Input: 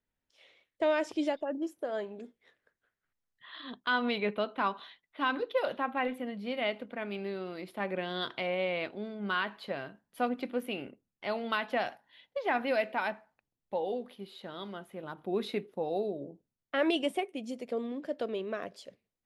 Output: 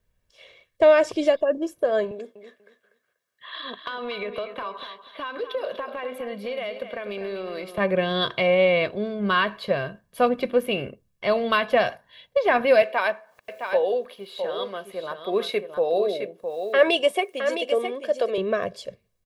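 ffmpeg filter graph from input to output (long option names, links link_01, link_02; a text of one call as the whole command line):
ffmpeg -i in.wav -filter_complex "[0:a]asettb=1/sr,asplit=3[link_01][link_02][link_03];[link_01]atrim=end=2.114[link_04];[link_02]atrim=start=2.11:end=7.78,asetpts=PTS-STARTPTS,afade=type=in:duration=0.004:curve=qsin,afade=type=out:start_time=5.666:duration=0.004:curve=qsin,highpass=320,acompressor=threshold=-38dB:ratio=10:attack=3.2:release=140:knee=1:detection=peak,aecho=1:1:243|486|729:0.316|0.0727|0.0167,atrim=end_sample=250047[link_05];[link_03]atrim=start=7.776[link_06];[link_04][link_05]acrossfade=duration=0.004:curve1=hsin:curve2=qsin[link_07];[link_07][link_06]acrossfade=duration=0.004:curve1=qsin:curve2=hsin,asettb=1/sr,asplit=3[link_08][link_09][link_10];[link_08]atrim=end=12.824[link_11];[link_09]atrim=start=12.82:end=18.38,asetpts=PTS-STARTPTS,afade=type=in:duration=0.004:curve=qsin,afade=type=out:start_time=5.556:duration=0.004:curve=qsin,highpass=420,acompressor=mode=upward:threshold=-52dB:ratio=2.5:attack=3.2:release=140:knee=2.83:detection=peak,aecho=1:1:663:0.422,atrim=end_sample=245196[link_12];[link_10]atrim=start=18.376[link_13];[link_11][link_12]acrossfade=duration=0.004:curve1=hsin:curve2=qsin[link_14];[link_14][link_13]acrossfade=duration=0.004:curve1=qsin:curve2=hsin,lowshelf=frequency=250:gain=8.5,aecho=1:1:1.8:0.62,volume=8.5dB" out.wav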